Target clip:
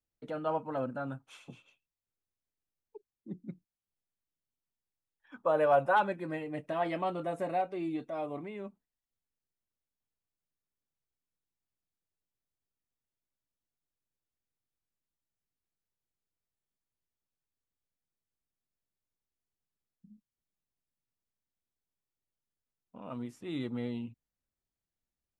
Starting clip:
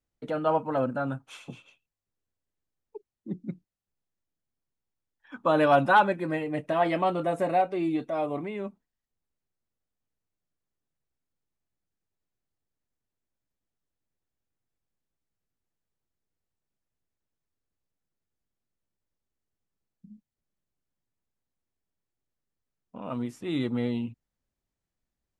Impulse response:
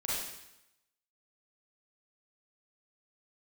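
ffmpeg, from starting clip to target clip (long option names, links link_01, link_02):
-filter_complex "[0:a]asettb=1/sr,asplit=3[link_01][link_02][link_03];[link_01]atrim=end=5.424[link_04];[link_02]atrim=start=5.42:end=5.97,asetpts=PTS-STARTPTS,afade=type=in:duration=0.004:curve=qsin,afade=type=out:start_time=0.546:duration=0.004:curve=qsin,equalizer=frequency=250:width_type=o:width=1:gain=-12,equalizer=frequency=500:width_type=o:width=1:gain=8,equalizer=frequency=4000:width_type=o:width=1:gain=-10[link_05];[link_03]atrim=start=5.966[link_06];[link_04][link_05]acrossfade=duration=0.004:curve1=hsin:curve2=qsin[link_07];[link_07][link_06]acrossfade=duration=0.004:curve1=qsin:curve2=hsin,volume=-7.5dB"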